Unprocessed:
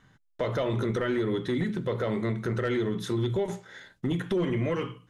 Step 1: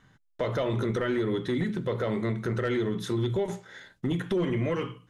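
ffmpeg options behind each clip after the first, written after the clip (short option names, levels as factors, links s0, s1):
-af anull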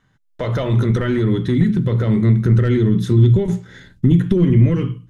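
-af "asubboost=boost=10:cutoff=230,dynaudnorm=f=130:g=5:m=2.99,volume=0.75"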